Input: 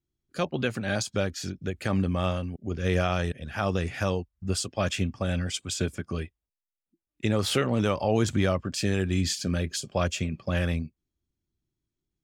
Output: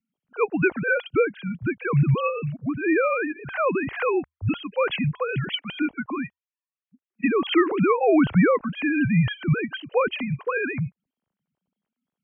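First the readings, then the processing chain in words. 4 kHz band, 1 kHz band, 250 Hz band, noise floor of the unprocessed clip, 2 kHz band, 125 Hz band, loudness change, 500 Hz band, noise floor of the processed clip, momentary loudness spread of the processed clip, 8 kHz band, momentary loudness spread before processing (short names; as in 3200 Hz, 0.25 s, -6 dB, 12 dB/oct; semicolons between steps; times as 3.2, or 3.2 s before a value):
-1.0 dB, +6.0 dB, +6.0 dB, under -85 dBFS, +8.0 dB, +2.0 dB, +4.5 dB, +6.0 dB, under -85 dBFS, 9 LU, under -40 dB, 8 LU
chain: sine-wave speech; frequency shift -80 Hz; gain +4.5 dB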